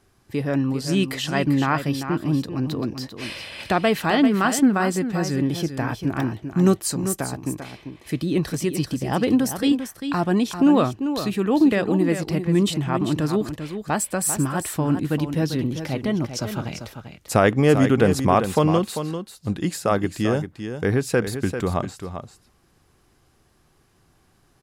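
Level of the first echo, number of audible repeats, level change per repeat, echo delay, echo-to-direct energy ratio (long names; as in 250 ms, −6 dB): −9.0 dB, 1, repeats not evenly spaced, 394 ms, −9.0 dB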